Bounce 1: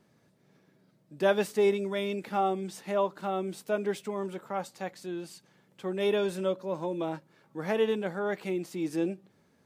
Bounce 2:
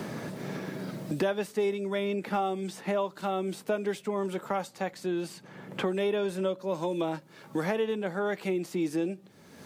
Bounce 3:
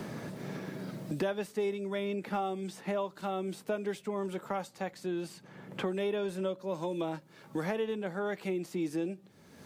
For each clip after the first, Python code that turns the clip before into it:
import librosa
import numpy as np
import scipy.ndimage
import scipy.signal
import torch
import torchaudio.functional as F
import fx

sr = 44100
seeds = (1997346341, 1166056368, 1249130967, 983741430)

y1 = fx.band_squash(x, sr, depth_pct=100)
y2 = fx.low_shelf(y1, sr, hz=100.0, db=6.0)
y2 = y2 * librosa.db_to_amplitude(-4.5)